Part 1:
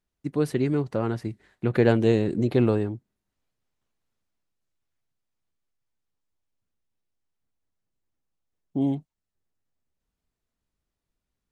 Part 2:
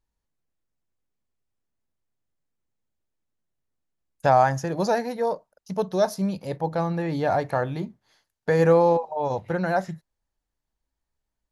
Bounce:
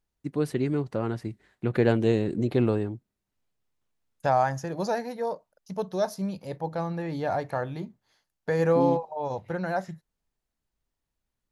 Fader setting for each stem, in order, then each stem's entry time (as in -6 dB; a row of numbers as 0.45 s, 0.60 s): -2.5 dB, -5.0 dB; 0.00 s, 0.00 s